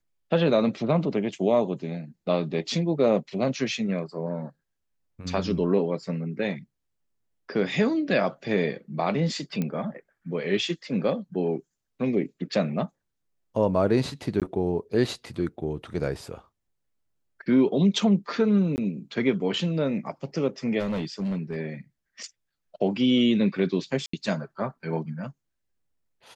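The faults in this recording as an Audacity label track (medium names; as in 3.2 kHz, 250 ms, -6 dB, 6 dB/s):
9.620000	9.620000	pop -16 dBFS
14.400000	14.420000	dropout 17 ms
18.760000	18.780000	dropout 19 ms
20.800000	21.570000	clipped -24.5 dBFS
24.060000	24.130000	dropout 74 ms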